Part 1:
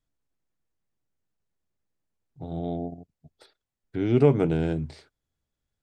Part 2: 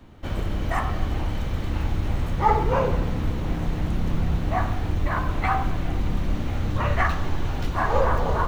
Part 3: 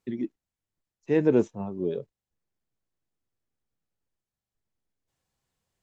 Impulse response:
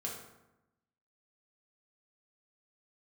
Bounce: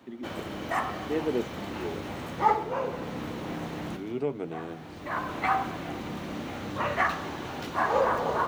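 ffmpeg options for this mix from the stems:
-filter_complex "[0:a]volume=-10dB,asplit=2[link_01][link_02];[1:a]volume=-1.5dB[link_03];[2:a]volume=-6.5dB[link_04];[link_02]apad=whole_len=373895[link_05];[link_03][link_05]sidechaincompress=threshold=-39dB:ratio=12:attack=7.7:release=737[link_06];[link_01][link_06][link_04]amix=inputs=3:normalize=0,highpass=230"

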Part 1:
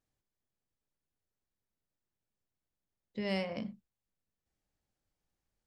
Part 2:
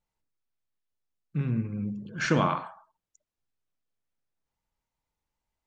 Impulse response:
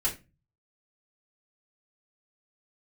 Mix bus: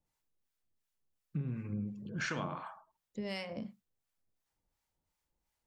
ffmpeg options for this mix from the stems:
-filter_complex "[0:a]highshelf=frequency=5800:gain=6,volume=-0.5dB[link_01];[1:a]volume=1dB[link_02];[link_01][link_02]amix=inputs=2:normalize=0,acrossover=split=740[link_03][link_04];[link_03]aeval=exprs='val(0)*(1-0.7/2+0.7/2*cos(2*PI*2.8*n/s))':channel_layout=same[link_05];[link_04]aeval=exprs='val(0)*(1-0.7/2-0.7/2*cos(2*PI*2.8*n/s))':channel_layout=same[link_06];[link_05][link_06]amix=inputs=2:normalize=0,acompressor=threshold=-34dB:ratio=6"

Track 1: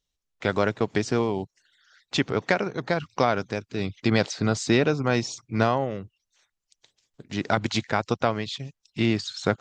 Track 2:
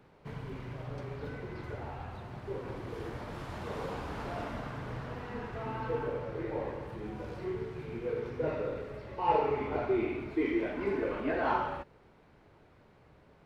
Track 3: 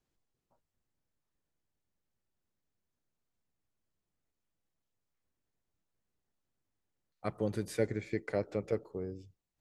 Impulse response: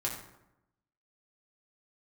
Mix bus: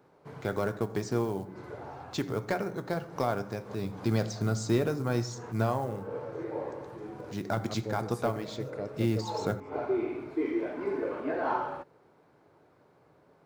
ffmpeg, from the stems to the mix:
-filter_complex "[0:a]asoftclip=type=tanh:threshold=-9dB,acrusher=bits=6:mode=log:mix=0:aa=0.000001,volume=-8.5dB,asplit=3[link_01][link_02][link_03];[link_02]volume=-8.5dB[link_04];[1:a]highpass=160,equalizer=frequency=210:width_type=o:width=0.29:gain=-8,volume=1dB[link_05];[2:a]adelay=450,volume=-4dB[link_06];[link_03]apad=whole_len=593146[link_07];[link_05][link_07]sidechaincompress=threshold=-50dB:ratio=10:attack=41:release=181[link_08];[3:a]atrim=start_sample=2205[link_09];[link_04][link_09]afir=irnorm=-1:irlink=0[link_10];[link_01][link_08][link_06][link_10]amix=inputs=4:normalize=0,equalizer=frequency=2800:width=1.1:gain=-8.5,bandreject=frequency=1900:width=25"

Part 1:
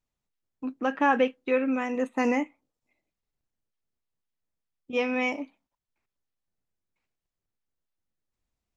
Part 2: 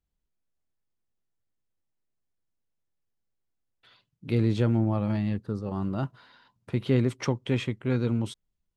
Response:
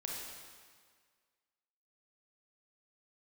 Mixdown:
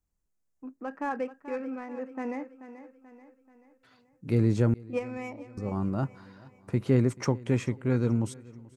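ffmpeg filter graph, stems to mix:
-filter_complex "[0:a]adynamicsmooth=sensitivity=2.5:basefreq=2300,volume=-1dB,asplit=2[link_01][link_02];[link_02]volume=-21dB[link_03];[1:a]deesser=0.65,equalizer=frequency=7000:width_type=o:width=0.83:gain=6,volume=0.5dB,asplit=3[link_04][link_05][link_06];[link_04]atrim=end=4.74,asetpts=PTS-STARTPTS,afade=type=out:start_time=4.736:duration=0.004:curve=hsin[link_07];[link_05]atrim=start=4.74:end=5.57,asetpts=PTS-STARTPTS,volume=0[link_08];[link_06]atrim=start=5.57,asetpts=PTS-STARTPTS,afade=type=in:duration=0.004:curve=hsin[link_09];[link_07][link_08][link_09]concat=n=3:v=0:a=1,asplit=3[link_10][link_11][link_12];[link_11]volume=-22.5dB[link_13];[link_12]apad=whole_len=386644[link_14];[link_01][link_14]sidechaingate=range=-8dB:threshold=-56dB:ratio=16:detection=peak[link_15];[link_03][link_13]amix=inputs=2:normalize=0,aecho=0:1:434|868|1302|1736|2170|2604|3038:1|0.48|0.23|0.111|0.0531|0.0255|0.0122[link_16];[link_15][link_10][link_16]amix=inputs=3:normalize=0,equalizer=frequency=3400:width_type=o:width=0.8:gain=-12.5"

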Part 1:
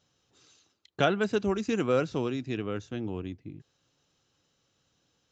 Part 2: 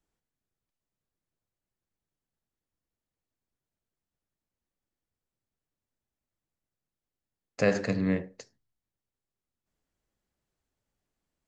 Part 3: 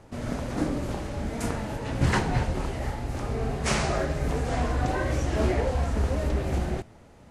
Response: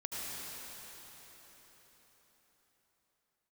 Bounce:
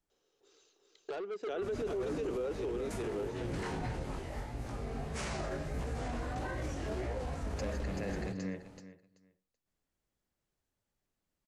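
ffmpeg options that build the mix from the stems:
-filter_complex "[0:a]highpass=frequency=410:width_type=q:width=4.9,adelay=100,volume=-7.5dB,asplit=2[link_01][link_02];[link_02]volume=-3.5dB[link_03];[1:a]volume=-2.5dB,asplit=2[link_04][link_05];[link_05]volume=-8.5dB[link_06];[2:a]flanger=delay=17:depth=4.5:speed=1.6,acompressor=mode=upward:threshold=-43dB:ratio=2.5,adelay=1500,volume=-6.5dB[link_07];[link_01][link_04]amix=inputs=2:normalize=0,asoftclip=type=tanh:threshold=-28dB,acompressor=threshold=-38dB:ratio=6,volume=0dB[link_08];[link_03][link_06]amix=inputs=2:normalize=0,aecho=0:1:382|764|1146:1|0.17|0.0289[link_09];[link_07][link_08][link_09]amix=inputs=3:normalize=0,alimiter=level_in=5dB:limit=-24dB:level=0:latency=1:release=18,volume=-5dB"

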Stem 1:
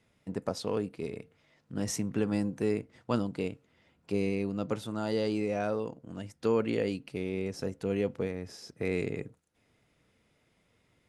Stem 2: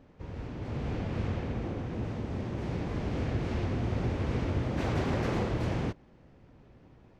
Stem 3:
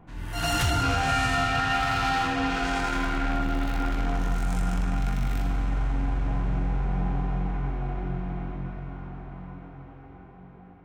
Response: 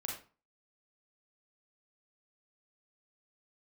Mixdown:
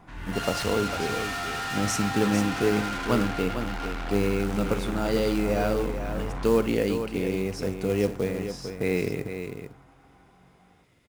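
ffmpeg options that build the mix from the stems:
-filter_complex "[0:a]acrusher=bits=5:mode=log:mix=0:aa=0.000001,volume=3dB,asplit=3[link_01][link_02][link_03];[link_02]volume=-8.5dB[link_04];[link_03]volume=-6.5dB[link_05];[2:a]equalizer=frequency=1500:width_type=o:width=2.9:gain=7.5,asoftclip=type=hard:threshold=-27.5dB,volume=-3dB,afade=type=out:start_time=6.46:duration=0.31:silence=0.334965[link_06];[3:a]atrim=start_sample=2205[link_07];[link_04][link_07]afir=irnorm=-1:irlink=0[link_08];[link_05]aecho=0:1:450:1[link_09];[link_01][link_06][link_08][link_09]amix=inputs=4:normalize=0"

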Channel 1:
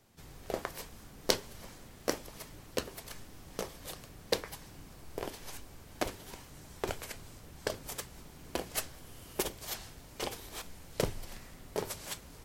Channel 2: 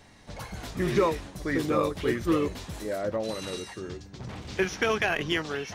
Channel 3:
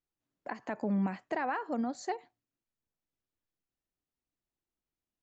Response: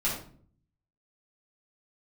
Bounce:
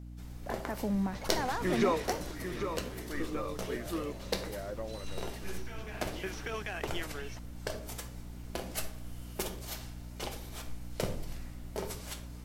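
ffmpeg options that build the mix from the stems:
-filter_complex "[0:a]volume=-5.5dB,asplit=2[link_01][link_02];[link_02]volume=-9.5dB[link_03];[1:a]lowshelf=frequency=140:gain=-12,alimiter=limit=-17.5dB:level=0:latency=1:release=132,adelay=850,volume=-2dB,asplit=3[link_04][link_05][link_06];[link_05]volume=-23dB[link_07];[link_06]volume=-7.5dB[link_08];[2:a]lowpass=2200,volume=-1dB,asplit=2[link_09][link_10];[link_10]apad=whole_len=290963[link_11];[link_04][link_11]sidechaingate=range=-33dB:threshold=-53dB:ratio=16:detection=peak[link_12];[3:a]atrim=start_sample=2205[link_13];[link_03][link_07]amix=inputs=2:normalize=0[link_14];[link_14][link_13]afir=irnorm=-1:irlink=0[link_15];[link_08]aecho=0:1:794:1[link_16];[link_01][link_12][link_09][link_15][link_16]amix=inputs=5:normalize=0,aeval=exprs='val(0)+0.00631*(sin(2*PI*60*n/s)+sin(2*PI*2*60*n/s)/2+sin(2*PI*3*60*n/s)/3+sin(2*PI*4*60*n/s)/4+sin(2*PI*5*60*n/s)/5)':channel_layout=same"

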